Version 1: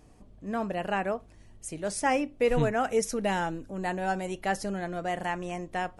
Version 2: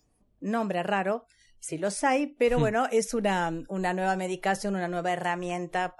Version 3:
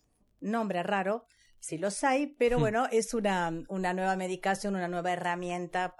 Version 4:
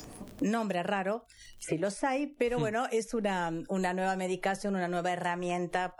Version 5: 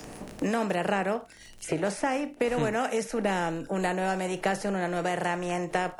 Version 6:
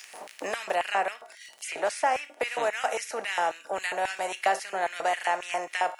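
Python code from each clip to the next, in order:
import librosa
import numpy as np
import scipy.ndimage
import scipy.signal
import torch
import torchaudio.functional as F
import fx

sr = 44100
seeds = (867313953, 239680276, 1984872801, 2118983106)

y1 = fx.noise_reduce_blind(x, sr, reduce_db=28)
y1 = fx.band_squash(y1, sr, depth_pct=40)
y1 = y1 * 10.0 ** (2.0 / 20.0)
y2 = fx.dmg_crackle(y1, sr, seeds[0], per_s=37.0, level_db=-53.0)
y2 = y2 * 10.0 ** (-2.5 / 20.0)
y3 = fx.band_squash(y2, sr, depth_pct=100)
y3 = y3 * 10.0 ** (-2.0 / 20.0)
y4 = fx.bin_compress(y3, sr, power=0.6)
y4 = fx.band_widen(y4, sr, depth_pct=70)
y5 = fx.comb_fb(y4, sr, f0_hz=130.0, decay_s=0.63, harmonics='odd', damping=0.0, mix_pct=60)
y5 = fx.filter_lfo_highpass(y5, sr, shape='square', hz=3.7, low_hz=710.0, high_hz=2200.0, q=1.7)
y5 = y5 * 10.0 ** (8.5 / 20.0)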